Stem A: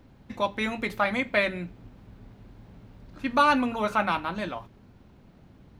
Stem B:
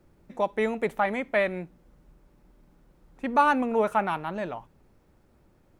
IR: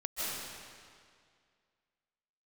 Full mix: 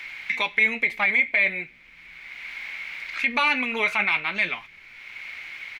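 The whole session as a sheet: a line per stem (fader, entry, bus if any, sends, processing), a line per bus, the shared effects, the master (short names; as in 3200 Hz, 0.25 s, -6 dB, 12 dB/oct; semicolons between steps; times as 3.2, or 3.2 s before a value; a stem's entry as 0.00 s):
+2.0 dB, 0.00 s, no send, resonant high-pass 2200 Hz, resonance Q 10; high shelf 7800 Hz -9.5 dB; three-band squash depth 70%
-1.0 dB, 2.6 ms, polarity flipped, no send, flange 1.2 Hz, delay 7.8 ms, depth 5 ms, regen +41%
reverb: off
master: limiter -11 dBFS, peak gain reduction 8 dB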